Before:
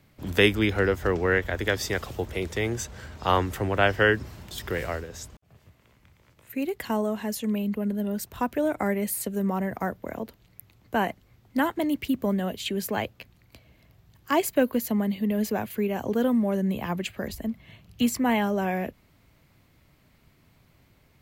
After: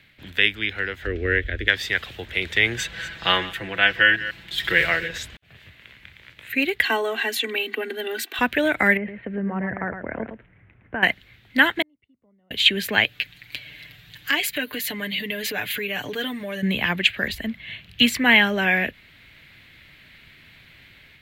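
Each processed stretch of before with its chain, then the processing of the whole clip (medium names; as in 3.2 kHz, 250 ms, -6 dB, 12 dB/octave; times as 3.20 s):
1.06–1.68 s: tilt EQ -3.5 dB/octave + static phaser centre 370 Hz, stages 4
2.78–5.18 s: chunks repeated in reverse 153 ms, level -14 dB + comb 6 ms, depth 72%
6.84–8.39 s: rippled Chebyshev high-pass 220 Hz, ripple 3 dB + comb 2.6 ms, depth 96%
8.97–11.03 s: compression, threshold -27 dBFS + Gaussian low-pass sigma 5.2 samples + delay 111 ms -8 dB
11.82–12.51 s: Savitzky-Golay filter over 65 samples + inverted gate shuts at -31 dBFS, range -37 dB
13.05–16.63 s: comb 6.8 ms, depth 77% + compression 2:1, threshold -41 dBFS + treble shelf 3 kHz +7.5 dB
whole clip: high-order bell 2.5 kHz +16 dB; level rider gain up to 5 dB; trim -1 dB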